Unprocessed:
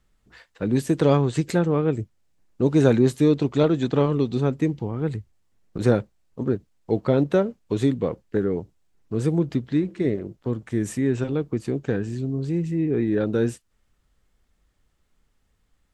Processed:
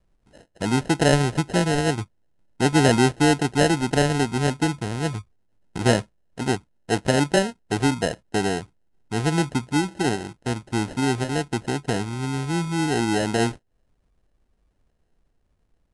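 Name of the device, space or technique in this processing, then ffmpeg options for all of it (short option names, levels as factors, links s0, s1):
crushed at another speed: -af "asetrate=88200,aresample=44100,acrusher=samples=19:mix=1:aa=0.000001,asetrate=22050,aresample=44100"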